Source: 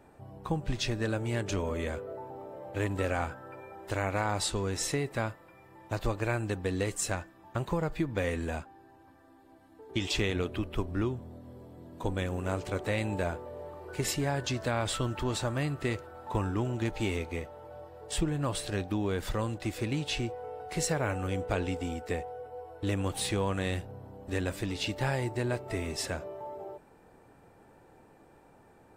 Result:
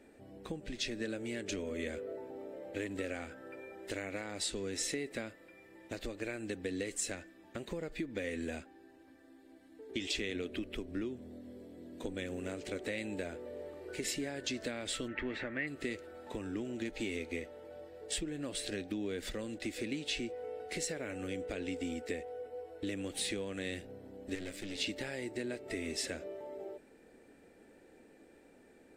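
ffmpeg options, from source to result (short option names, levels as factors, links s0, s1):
-filter_complex "[0:a]asplit=3[s0][s1][s2];[s0]afade=t=out:st=15.07:d=0.02[s3];[s1]lowpass=f=2000:t=q:w=4.3,afade=t=in:st=15.07:d=0.02,afade=t=out:st=15.66:d=0.02[s4];[s2]afade=t=in:st=15.66:d=0.02[s5];[s3][s4][s5]amix=inputs=3:normalize=0,asettb=1/sr,asplit=3[s6][s7][s8];[s6]atrim=end=24.354[s9];[s7]atrim=start=24.35:end=24.78,asetpts=PTS-STARTPTS,afade=t=in:d=0.004:c=qsin,afade=t=out:st=0.426:d=0.004:c=qsin,aeval=exprs='(tanh(56.2*val(0)+0.75)-tanh(0.75))/56.2':c=same[s10];[s8]atrim=start=24.776[s11];[s9][s10]acrossfade=d=0.004:c1=hsin:c2=qsin[s12];[s12][s11]acrossfade=d=0.004:c1=qsin:c2=hsin,acompressor=threshold=0.0224:ratio=6,equalizer=f=125:t=o:w=1:g=-10,equalizer=f=250:t=o:w=1:g=9,equalizer=f=500:t=o:w=1:g=6,equalizer=f=1000:t=o:w=1:g=-11,equalizer=f=2000:t=o:w=1:g=9,equalizer=f=4000:t=o:w=1:g=5,equalizer=f=8000:t=o:w=1:g=6,volume=0.501"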